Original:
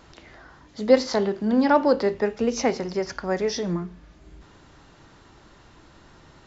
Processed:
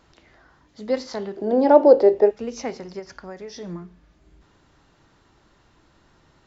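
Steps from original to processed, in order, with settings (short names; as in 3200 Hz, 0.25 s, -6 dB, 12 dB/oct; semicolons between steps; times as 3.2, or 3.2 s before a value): 1.37–2.31 band shelf 500 Hz +15.5 dB; 2.99–3.61 compressor, threshold -26 dBFS, peak gain reduction 7.5 dB; gain -7 dB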